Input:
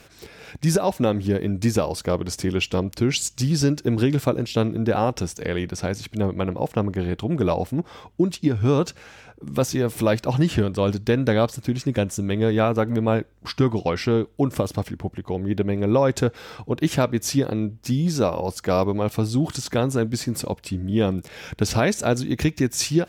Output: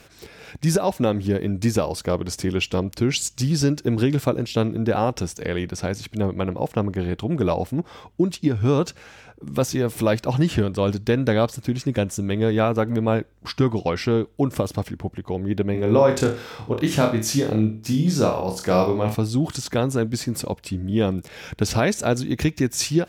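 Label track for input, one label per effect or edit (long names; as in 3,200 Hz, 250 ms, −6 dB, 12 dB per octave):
15.720000	19.150000	flutter between parallel walls apart 4.7 metres, dies away in 0.36 s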